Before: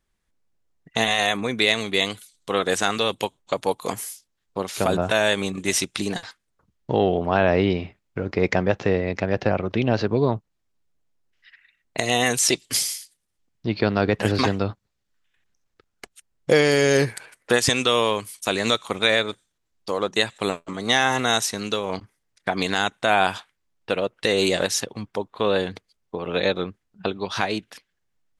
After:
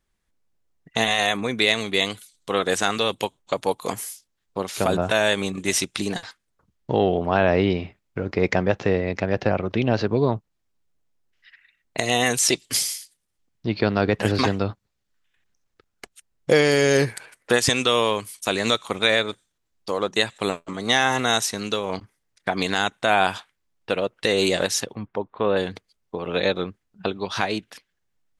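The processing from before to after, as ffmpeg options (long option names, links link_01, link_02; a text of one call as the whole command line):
ffmpeg -i in.wav -filter_complex "[0:a]asettb=1/sr,asplit=3[link_01][link_02][link_03];[link_01]atrim=end=24.954[link_04];[link_02]atrim=start=24.95:end=25.57,asetpts=PTS-STARTPTS,afade=type=in:duration=0.004:curve=qsin,afade=type=out:start_time=0.616:duration=0.004:curve=qsin,lowpass=2100[link_05];[link_03]atrim=start=25.566[link_06];[link_04][link_05]acrossfade=duration=0.004:curve1=hsin:curve2=qsin[link_07];[link_07][link_06]acrossfade=duration=0.004:curve1=qsin:curve2=hsin" out.wav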